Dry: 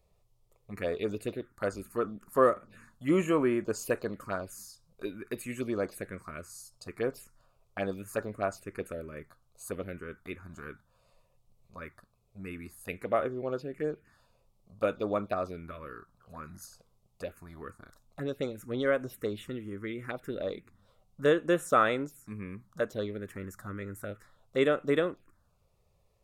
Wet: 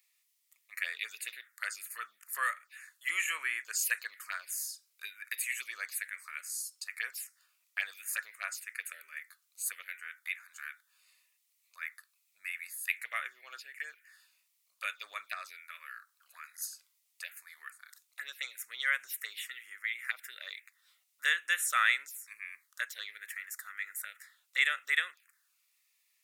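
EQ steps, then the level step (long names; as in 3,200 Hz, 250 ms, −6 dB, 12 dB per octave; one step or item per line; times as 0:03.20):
high-pass with resonance 1,900 Hz, resonance Q 3.6
spectral tilt +4.5 dB per octave
−4.5 dB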